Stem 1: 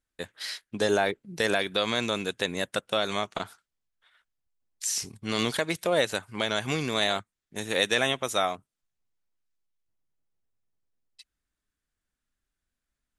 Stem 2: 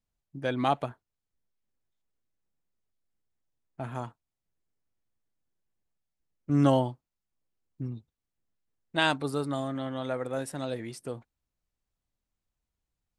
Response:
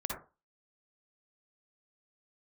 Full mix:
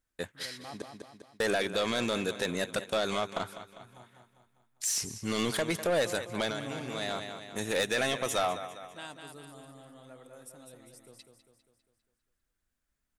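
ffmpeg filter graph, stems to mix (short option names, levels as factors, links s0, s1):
-filter_complex "[0:a]volume=1.19,asplit=3[s0][s1][s2];[s0]atrim=end=0.82,asetpts=PTS-STARTPTS,afade=t=out:st=0.816:d=0.004:c=hsin[s3];[s1]atrim=start=0.82:end=1.4,asetpts=PTS-STARTPTS,volume=0[s4];[s2]atrim=start=1.4,asetpts=PTS-STARTPTS,afade=t=in:d=0.004:c=hsin[s5];[s3][s4][s5]concat=n=3:v=0:a=1,asplit=2[s6][s7];[s7]volume=0.158[s8];[1:a]aemphasis=mode=production:type=75fm,volume=0.106,asplit=3[s9][s10][s11];[s10]volume=0.531[s12];[s11]apad=whole_len=581666[s13];[s6][s13]sidechaincompress=threshold=0.00251:ratio=6:attack=40:release=727[s14];[s8][s12]amix=inputs=2:normalize=0,aecho=0:1:200|400|600|800|1000|1200|1400:1|0.51|0.26|0.133|0.0677|0.0345|0.0176[s15];[s14][s9][s15]amix=inputs=3:normalize=0,equalizer=f=3700:w=1:g=-3,asoftclip=type=tanh:threshold=0.0794"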